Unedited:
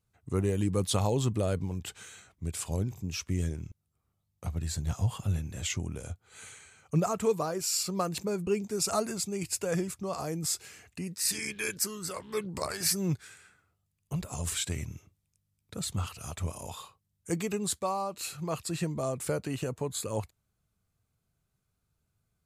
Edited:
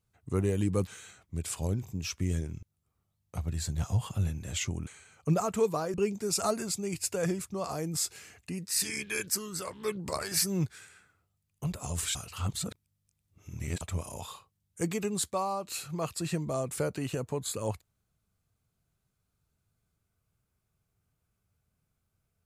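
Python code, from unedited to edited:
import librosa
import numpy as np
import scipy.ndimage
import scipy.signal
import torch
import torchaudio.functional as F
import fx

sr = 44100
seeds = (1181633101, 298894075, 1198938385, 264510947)

y = fx.edit(x, sr, fx.cut(start_s=0.87, length_s=1.09),
    fx.cut(start_s=5.96, length_s=0.57),
    fx.cut(start_s=7.6, length_s=0.83),
    fx.reverse_span(start_s=14.64, length_s=1.66), tone=tone)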